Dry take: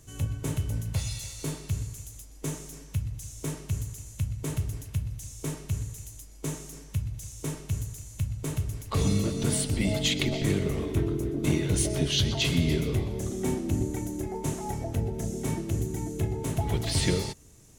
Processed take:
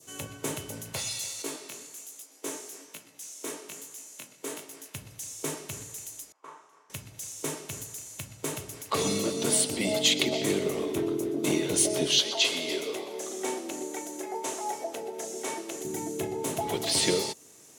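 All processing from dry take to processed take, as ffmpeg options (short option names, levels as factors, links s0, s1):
-filter_complex "[0:a]asettb=1/sr,asplit=3[s0][s1][s2];[s0]atrim=end=1.424[s3];[s1]atrim=start=1.42:end=4.95,asetpts=PTS-STARTPTS,afade=t=in:d=0.004:c=qsin,afade=t=out:st=3.526:d=0.004:c=qsin,highpass=f=220:w=0.5412,highpass=f=220:w=1.3066,flanger=delay=17.5:depth=6.5:speed=1.2[s4];[s2]atrim=start=4.946[s5];[s3][s4]acrossfade=d=0.004:c1=hsin:c2=qsin[s6];[s6][s5]acrossfade=d=0.004:c1=qsin:c2=hsin,asettb=1/sr,asplit=3[s7][s8][s9];[s7]atrim=end=6.324[s10];[s8]atrim=start=6.32:end=6.9,asetpts=PTS-STARTPTS,afade=t=in:d=0.004:c=qsin,afade=t=out:st=0.576:d=0.004:c=qsin,bandpass=f=1100:t=q:w=4.3,asplit=2[s11][s12];[s12]adelay=38,volume=0.501[s13];[s11][s13]amix=inputs=2:normalize=0,atrim=end_sample=25578[s14];[s9]atrim=start=6.896[s15];[s10][s14]acrossfade=d=0.004:c1=hsin:c2=qsin[s16];[s16][s15]acrossfade=d=0.004:c1=qsin:c2=hsin,asettb=1/sr,asplit=3[s17][s18][s19];[s17]atrim=end=12.194[s20];[s18]atrim=start=12.19:end=15.85,asetpts=PTS-STARTPTS,afade=t=in:d=0.004:c=qsin,afade=t=out:st=3.656:d=0.004:c=qsin,acrossover=split=9600[s21][s22];[s22]acompressor=threshold=0.00178:ratio=4:attack=1:release=60[s23];[s21][s23]amix=inputs=2:normalize=0,highpass=440[s24];[s19]atrim=start=15.846[s25];[s20][s24]acrossfade=d=0.004:c1=hsin:c2=qsin[s26];[s26][s25]acrossfade=d=0.004:c1=qsin:c2=hsin,adynamicequalizer=threshold=0.00282:dfrequency=1700:dqfactor=1.2:tfrequency=1700:tqfactor=1.2:attack=5:release=100:ratio=0.375:range=3:mode=cutabove:tftype=bell,highpass=360,volume=1.88"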